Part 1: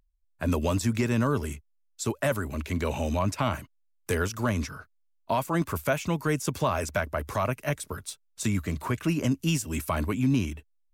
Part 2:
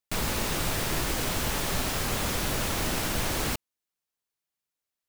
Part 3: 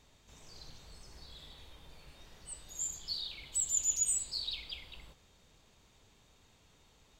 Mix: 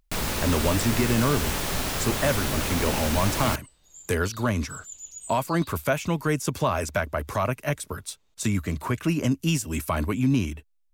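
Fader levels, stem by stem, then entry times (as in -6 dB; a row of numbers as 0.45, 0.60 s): +2.0, +1.0, -10.0 dB; 0.00, 0.00, 1.15 s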